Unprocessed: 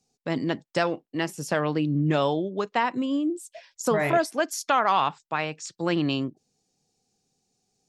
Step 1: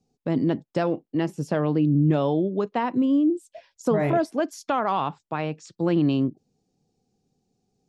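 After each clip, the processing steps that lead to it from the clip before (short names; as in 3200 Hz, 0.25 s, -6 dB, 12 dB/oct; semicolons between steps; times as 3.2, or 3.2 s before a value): EQ curve 280 Hz 0 dB, 1900 Hz -11 dB, 3200 Hz -8 dB; in parallel at +1 dB: limiter -22 dBFS, peak gain reduction 8 dB; on the sum: high shelf 4700 Hz -12 dB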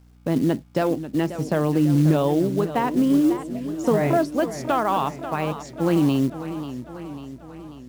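hum 60 Hz, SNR 29 dB; companded quantiser 6-bit; warbling echo 0.542 s, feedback 59%, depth 131 cents, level -12 dB; gain +2 dB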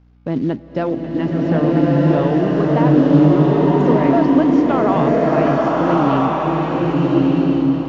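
downsampling 16000 Hz; air absorption 210 m; bloom reverb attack 1.37 s, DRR -5 dB; gain +1.5 dB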